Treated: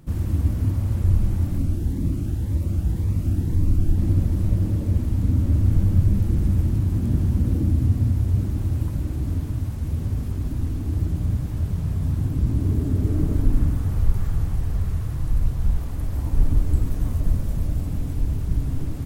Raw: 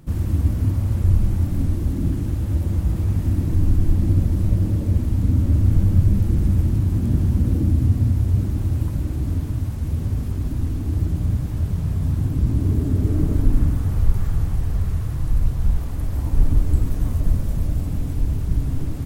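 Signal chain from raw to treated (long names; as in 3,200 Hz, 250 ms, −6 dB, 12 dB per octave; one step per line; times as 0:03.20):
0:01.58–0:03.98: phaser whose notches keep moving one way rising 1.9 Hz
level −2 dB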